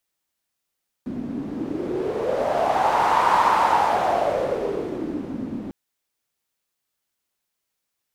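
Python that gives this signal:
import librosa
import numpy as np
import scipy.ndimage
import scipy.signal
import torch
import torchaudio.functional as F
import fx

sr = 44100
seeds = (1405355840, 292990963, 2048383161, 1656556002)

y = fx.wind(sr, seeds[0], length_s=4.65, low_hz=240.0, high_hz=970.0, q=4.6, gusts=1, swing_db=12.5)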